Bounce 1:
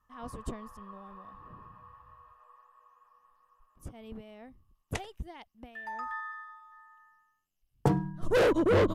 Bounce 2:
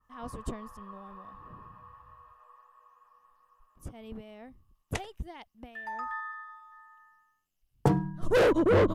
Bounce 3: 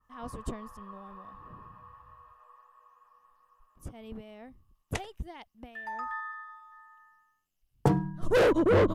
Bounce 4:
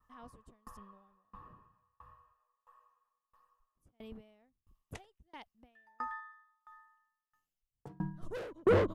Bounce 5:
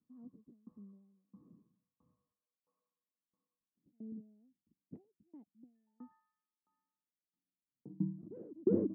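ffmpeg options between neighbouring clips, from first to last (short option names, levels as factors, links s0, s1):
-af "adynamicequalizer=threshold=0.00398:dfrequency=2600:dqfactor=0.7:tfrequency=2600:tqfactor=0.7:attack=5:release=100:ratio=0.375:range=3.5:mode=cutabove:tftype=highshelf,volume=1.19"
-af anull
-af "aeval=exprs='val(0)*pow(10,-33*if(lt(mod(1.5*n/s,1),2*abs(1.5)/1000),1-mod(1.5*n/s,1)/(2*abs(1.5)/1000),(mod(1.5*n/s,1)-2*abs(1.5)/1000)/(1-2*abs(1.5)/1000))/20)':c=same"
-af "asuperpass=centerf=240:order=4:qfactor=1.6,volume=1.78"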